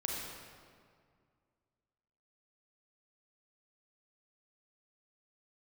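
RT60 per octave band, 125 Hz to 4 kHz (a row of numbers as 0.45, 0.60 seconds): 2.5, 2.4, 2.1, 2.0, 1.7, 1.3 seconds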